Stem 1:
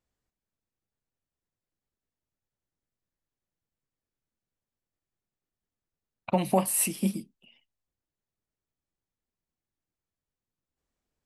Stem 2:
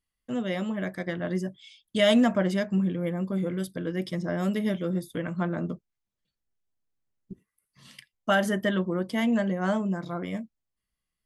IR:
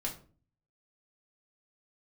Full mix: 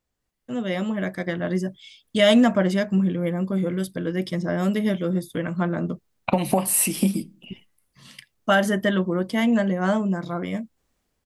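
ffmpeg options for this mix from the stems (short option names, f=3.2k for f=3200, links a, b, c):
-filter_complex "[0:a]acompressor=threshold=-30dB:ratio=6,volume=3dB,asplit=2[a][b];[b]volume=-18dB[c];[1:a]adelay=200,volume=-4.5dB[d];[2:a]atrim=start_sample=2205[e];[c][e]afir=irnorm=-1:irlink=0[f];[a][d][f]amix=inputs=3:normalize=0,dynaudnorm=f=150:g=7:m=9dB"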